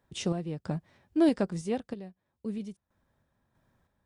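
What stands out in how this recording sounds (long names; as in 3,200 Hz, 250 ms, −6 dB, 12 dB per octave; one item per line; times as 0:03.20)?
sample-and-hold tremolo 3.1 Hz, depth 85%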